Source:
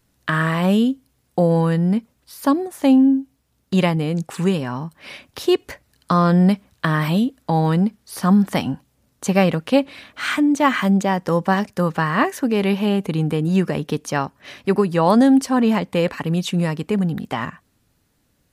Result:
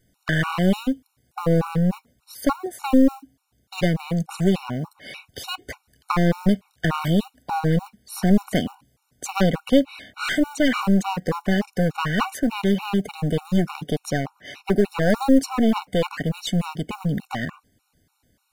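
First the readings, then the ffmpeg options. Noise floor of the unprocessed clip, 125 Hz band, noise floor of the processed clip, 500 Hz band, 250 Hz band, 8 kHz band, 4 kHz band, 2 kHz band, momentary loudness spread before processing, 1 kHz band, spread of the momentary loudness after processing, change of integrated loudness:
-65 dBFS, -3.5 dB, -71 dBFS, -3.5 dB, -4.0 dB, -1.5 dB, -1.5 dB, -3.0 dB, 11 LU, -5.5 dB, 13 LU, -3.5 dB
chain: -af "acrusher=bits=8:mode=log:mix=0:aa=0.000001,aeval=exprs='clip(val(0),-1,0.0794)':c=same,afftfilt=real='re*gt(sin(2*PI*3.4*pts/sr)*(1-2*mod(floor(b*sr/1024/740),2)),0)':imag='im*gt(sin(2*PI*3.4*pts/sr)*(1-2*mod(floor(b*sr/1024/740),2)),0)':win_size=1024:overlap=0.75,volume=2dB"

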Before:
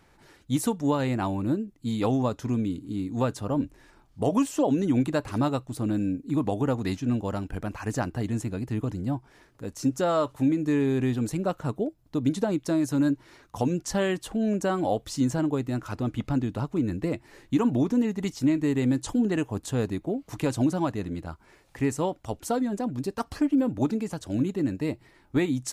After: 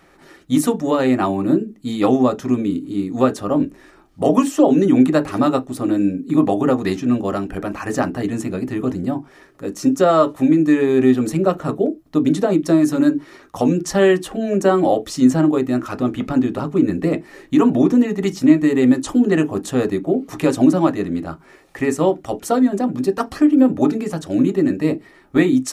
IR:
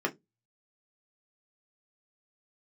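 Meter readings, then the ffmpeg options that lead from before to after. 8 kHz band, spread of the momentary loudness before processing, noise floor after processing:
+6.0 dB, 7 LU, -49 dBFS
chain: -filter_complex "[0:a]asplit=2[a][b];[1:a]atrim=start_sample=2205,atrim=end_sample=6174[c];[b][c]afir=irnorm=-1:irlink=0,volume=-6.5dB[d];[a][d]amix=inputs=2:normalize=0,volume=4dB"

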